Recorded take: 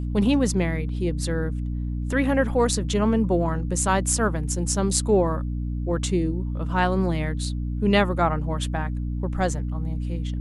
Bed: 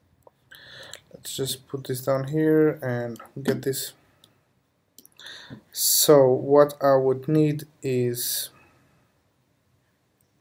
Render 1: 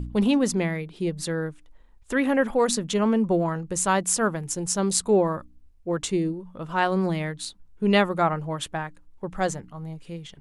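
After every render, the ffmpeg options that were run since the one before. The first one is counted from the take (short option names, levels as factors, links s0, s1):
-af "bandreject=f=60:t=h:w=4,bandreject=f=120:t=h:w=4,bandreject=f=180:t=h:w=4,bandreject=f=240:t=h:w=4,bandreject=f=300:t=h:w=4"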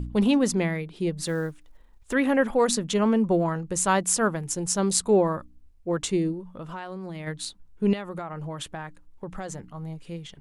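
-filter_complex "[0:a]asettb=1/sr,asplit=3[s0][s1][s2];[s0]atrim=end=1.234[s3];[s1]atrim=start=1.23:end=2.13,asetpts=PTS-STARTPTS,afade=t=in:d=0.004:c=qsin,afade=t=out:st=0.896:d=0.004:c=qsin,acrusher=bits=8:mode=log:mix=0:aa=0.000001[s4];[s2]atrim=start=2.126[s5];[s3][s4]acrossfade=d=0.004:c1=hsin:c2=qsin[s6];[s6][s5]acrossfade=d=0.004:c1=qsin:c2=hsin,asplit=3[s7][s8][s9];[s7]afade=t=out:st=6.55:d=0.02[s10];[s8]acompressor=threshold=0.0224:ratio=6:attack=3.2:release=140:knee=1:detection=peak,afade=t=in:st=6.55:d=0.02,afade=t=out:st=7.26:d=0.02[s11];[s9]afade=t=in:st=7.26:d=0.02[s12];[s10][s11][s12]amix=inputs=3:normalize=0,asettb=1/sr,asplit=3[s13][s14][s15];[s13]atrim=end=7.934[s16];[s14]atrim=start=7.93:end=9.72,asetpts=PTS-STARTPTS,afade=t=in:d=0.004:c=qsin,afade=t=out:st=1.786:d=0.004:c=qsin,acompressor=threshold=0.0316:ratio=12:attack=3.2:release=140:knee=1:detection=peak[s17];[s15]atrim=start=9.716[s18];[s16][s17]acrossfade=d=0.004:c1=hsin:c2=qsin[s19];[s19][s18]acrossfade=d=0.004:c1=qsin:c2=hsin"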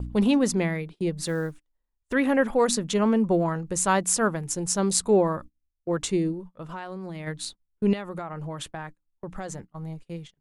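-af "agate=range=0.0501:threshold=0.0112:ratio=16:detection=peak,equalizer=f=3100:t=o:w=0.27:g=-2"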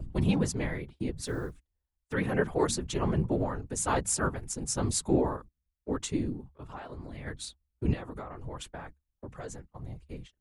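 -af "afftfilt=real='hypot(re,im)*cos(2*PI*random(0))':imag='hypot(re,im)*sin(2*PI*random(1))':win_size=512:overlap=0.75,afreqshift=-73"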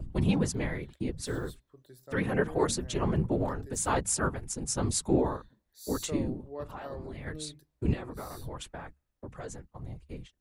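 -filter_complex "[1:a]volume=0.0596[s0];[0:a][s0]amix=inputs=2:normalize=0"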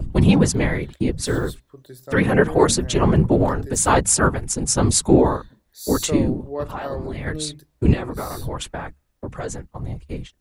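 -af "volume=3.98,alimiter=limit=0.708:level=0:latency=1"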